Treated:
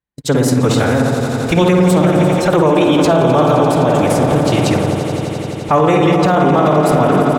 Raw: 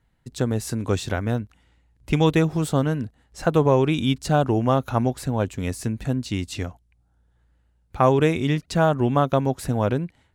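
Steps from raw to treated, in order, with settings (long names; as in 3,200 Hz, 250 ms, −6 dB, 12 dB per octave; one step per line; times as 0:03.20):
low-shelf EQ 150 Hz −9.5 dB
feedback echo with a low-pass in the loop 80 ms, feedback 84%, low-pass 2,500 Hz, level −4 dB
phase-vocoder pitch shift with formants kept +2 semitones
noise gate −41 dBFS, range −30 dB
tempo change 1.4×
on a send: echo that builds up and dies away 86 ms, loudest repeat 5, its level −15 dB
on the sum: boost into a limiter +15.5 dB
level −2.5 dB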